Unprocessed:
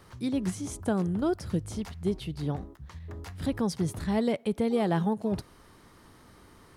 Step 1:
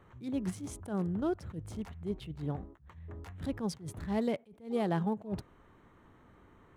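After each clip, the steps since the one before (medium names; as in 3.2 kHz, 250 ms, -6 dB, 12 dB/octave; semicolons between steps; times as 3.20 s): local Wiener filter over 9 samples; attacks held to a fixed rise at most 170 dB/s; trim -4.5 dB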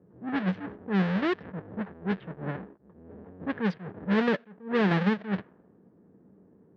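square wave that keeps the level; cabinet simulation 190–3700 Hz, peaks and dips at 190 Hz +9 dB, 450 Hz +5 dB, 1.7 kHz +9 dB; level-controlled noise filter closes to 390 Hz, open at -20.5 dBFS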